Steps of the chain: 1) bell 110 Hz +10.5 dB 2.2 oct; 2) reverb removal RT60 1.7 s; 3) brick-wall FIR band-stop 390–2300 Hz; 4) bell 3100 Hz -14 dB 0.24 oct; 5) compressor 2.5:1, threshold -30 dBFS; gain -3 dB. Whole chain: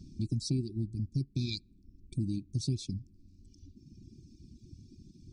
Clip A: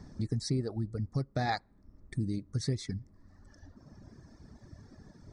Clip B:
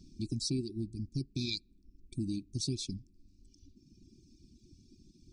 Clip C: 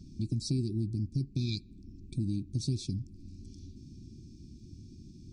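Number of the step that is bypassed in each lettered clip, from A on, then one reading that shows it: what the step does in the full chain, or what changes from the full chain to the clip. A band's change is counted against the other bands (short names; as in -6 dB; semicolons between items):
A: 3, 2 kHz band +14.0 dB; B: 1, 125 Hz band -8.5 dB; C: 2, momentary loudness spread change -3 LU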